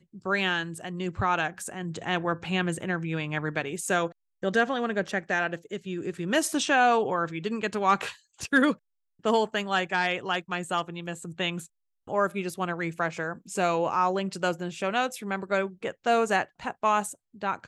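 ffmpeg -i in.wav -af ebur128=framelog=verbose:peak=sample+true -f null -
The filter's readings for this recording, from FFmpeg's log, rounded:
Integrated loudness:
  I:         -27.9 LUFS
  Threshold: -38.0 LUFS
Loudness range:
  LRA:         4.0 LU
  Threshold: -48.0 LUFS
  LRA low:   -29.9 LUFS
  LRA high:  -25.9 LUFS
Sample peak:
  Peak:      -10.1 dBFS
True peak:
  Peak:      -10.1 dBFS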